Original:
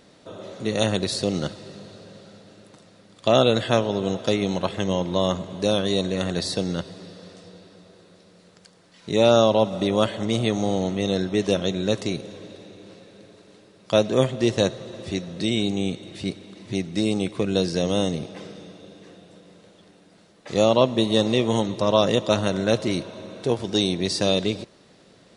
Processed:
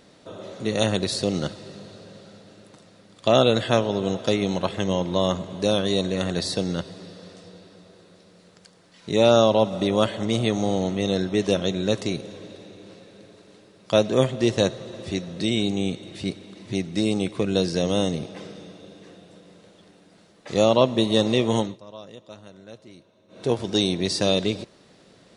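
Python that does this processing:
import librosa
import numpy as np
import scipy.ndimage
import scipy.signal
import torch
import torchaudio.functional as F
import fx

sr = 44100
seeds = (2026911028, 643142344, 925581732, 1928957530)

y = fx.edit(x, sr, fx.fade_down_up(start_s=21.59, length_s=1.89, db=-22.5, fade_s=0.2), tone=tone)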